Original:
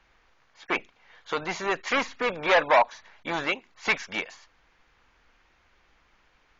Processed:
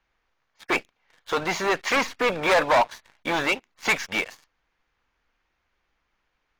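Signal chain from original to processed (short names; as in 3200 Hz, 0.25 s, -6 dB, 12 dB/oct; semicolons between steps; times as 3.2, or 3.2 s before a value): sample leveller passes 3; gain -5 dB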